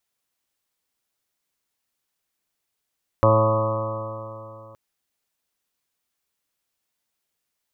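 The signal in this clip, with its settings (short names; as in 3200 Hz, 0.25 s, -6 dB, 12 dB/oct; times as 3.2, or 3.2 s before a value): stretched partials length 1.52 s, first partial 109 Hz, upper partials -11/-8/-13.5/2.5/-9.5/-15/-10/-5.5/-3.5/-9 dB, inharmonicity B 0.00065, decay 2.95 s, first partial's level -17.5 dB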